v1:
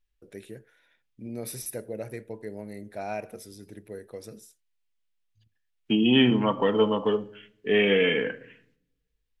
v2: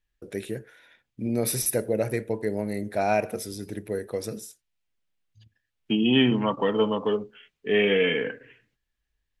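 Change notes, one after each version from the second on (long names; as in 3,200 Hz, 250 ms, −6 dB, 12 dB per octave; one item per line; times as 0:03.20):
first voice +10.0 dB
reverb: off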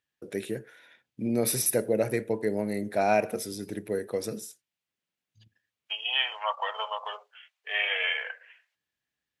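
first voice: add high-pass filter 130 Hz
second voice: add Butterworth high-pass 630 Hz 48 dB per octave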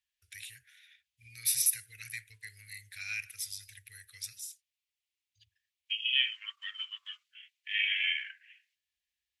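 master: add inverse Chebyshev band-stop filter 170–940 Hz, stop band 50 dB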